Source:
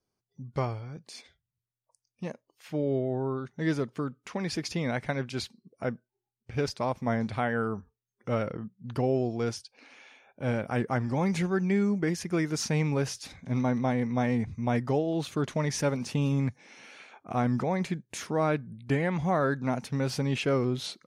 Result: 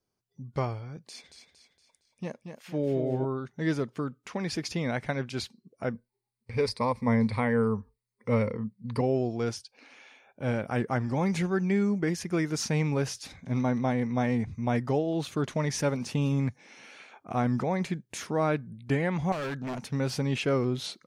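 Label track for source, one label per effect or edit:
1.010000	3.250000	modulated delay 231 ms, feedback 46%, depth 62 cents, level -7 dB
5.930000	9.010000	rippled EQ curve crests per octave 0.93, crest to trough 12 dB
19.320000	19.840000	overload inside the chain gain 31 dB

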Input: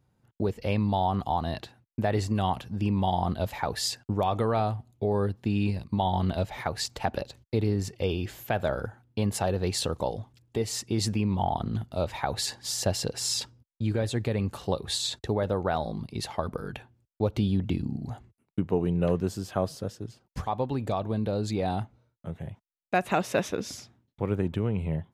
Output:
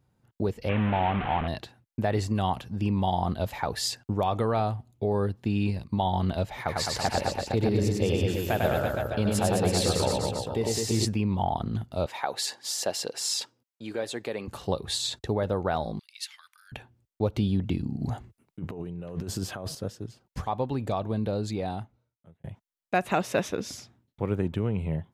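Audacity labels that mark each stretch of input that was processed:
0.690000	1.480000	one-bit delta coder 16 kbps, step -25.5 dBFS
6.580000	11.050000	reverse bouncing-ball echo first gap 100 ms, each gap 1.1×, echoes 5, each echo -2 dB
12.060000	14.480000	high-pass 360 Hz
15.990000	16.720000	inverse Chebyshev high-pass stop band from 570 Hz, stop band 60 dB
18.000000	19.750000	compressor with a negative ratio -34 dBFS
21.300000	22.440000	fade out

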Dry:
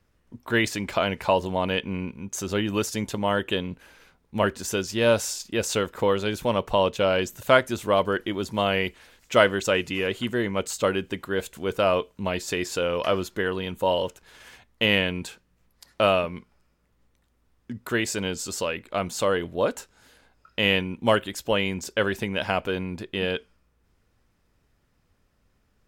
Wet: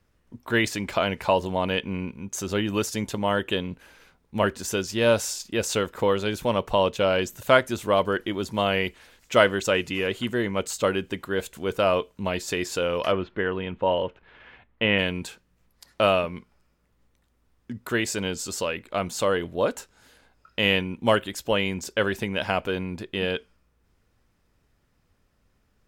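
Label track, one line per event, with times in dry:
13.120000	14.990000	low-pass 2.9 kHz 24 dB/octave

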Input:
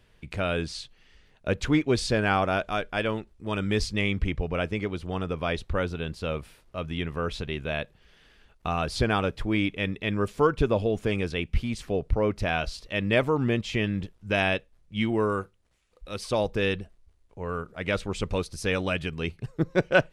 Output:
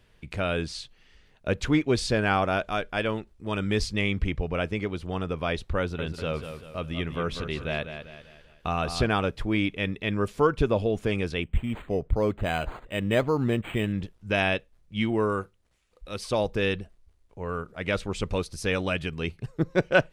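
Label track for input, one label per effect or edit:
5.790000	9.070000	feedback delay 195 ms, feedback 43%, level -9 dB
11.430000	13.930000	decimation joined by straight lines rate divided by 8×

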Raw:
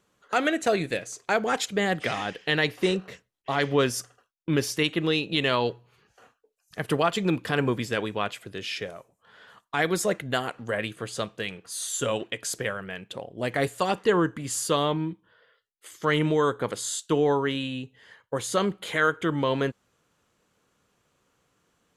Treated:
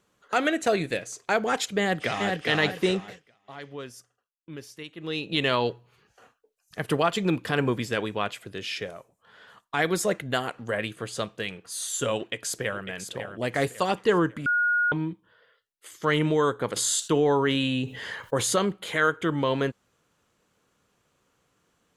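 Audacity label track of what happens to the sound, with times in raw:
1.790000	2.420000	echo throw 410 ms, feedback 30%, level -3 dB
2.970000	5.390000	dip -16 dB, fades 0.42 s
12.170000	12.820000	echo throw 550 ms, feedback 35%, level -8.5 dB
14.460000	14.920000	bleep 1.44 kHz -20 dBFS
16.760000	18.560000	level flattener amount 50%

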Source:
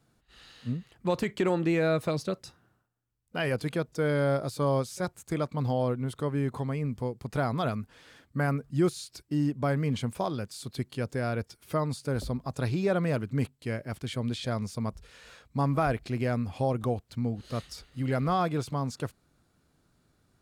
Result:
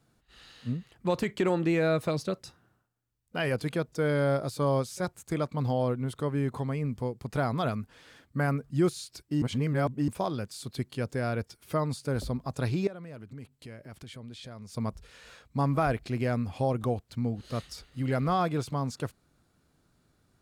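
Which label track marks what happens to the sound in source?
9.420000	10.080000	reverse
12.870000	14.740000	compression 4:1, threshold -43 dBFS

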